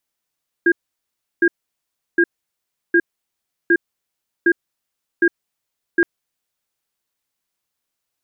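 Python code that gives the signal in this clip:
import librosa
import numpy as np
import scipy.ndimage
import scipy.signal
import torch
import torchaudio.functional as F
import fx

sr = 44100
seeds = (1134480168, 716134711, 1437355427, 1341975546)

y = fx.cadence(sr, length_s=5.37, low_hz=343.0, high_hz=1620.0, on_s=0.06, off_s=0.7, level_db=-13.0)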